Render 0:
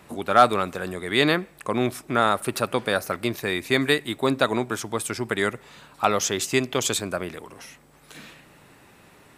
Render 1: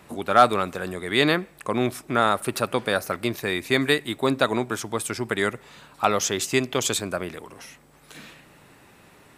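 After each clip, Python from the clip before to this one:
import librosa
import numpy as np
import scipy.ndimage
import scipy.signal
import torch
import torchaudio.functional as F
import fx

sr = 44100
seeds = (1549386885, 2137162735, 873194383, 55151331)

y = x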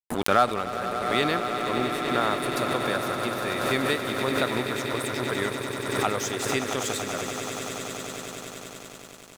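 y = fx.echo_swell(x, sr, ms=95, loudest=8, wet_db=-10.5)
y = np.sign(y) * np.maximum(np.abs(y) - 10.0 ** (-34.5 / 20.0), 0.0)
y = fx.pre_swell(y, sr, db_per_s=42.0)
y = y * 10.0 ** (-5.5 / 20.0)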